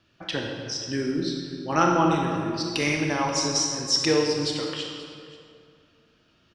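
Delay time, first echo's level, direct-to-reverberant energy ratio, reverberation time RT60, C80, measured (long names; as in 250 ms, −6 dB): 531 ms, −19.0 dB, 0.0 dB, 2.3 s, 3.0 dB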